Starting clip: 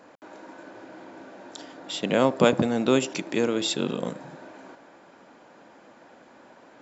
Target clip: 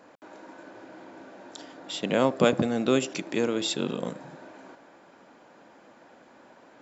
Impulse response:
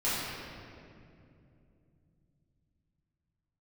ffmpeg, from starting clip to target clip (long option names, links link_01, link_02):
-filter_complex "[0:a]asettb=1/sr,asplit=3[link_01][link_02][link_03];[link_01]atrim=end=2.314[link_04];[link_02]atrim=start=2.31:end=3.23,asetpts=PTS-STARTPTS,afade=type=in:duration=0.004:curve=qsin,afade=type=out:start_time=0.916:duration=0.004:curve=qsin,bandreject=frequency=920:width=8.5[link_05];[link_03]atrim=start=3.226[link_06];[link_04][link_05]acrossfade=duration=0.004:curve1=hsin:curve2=qsin[link_07];[link_07][link_06]acrossfade=duration=0.004:curve1=qsin:curve2=hsin,volume=-2dB"